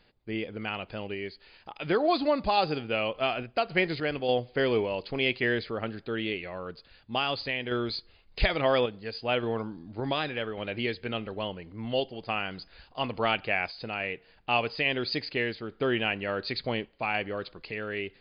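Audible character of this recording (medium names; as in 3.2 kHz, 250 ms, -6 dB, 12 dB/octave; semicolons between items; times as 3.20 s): random-step tremolo; MP3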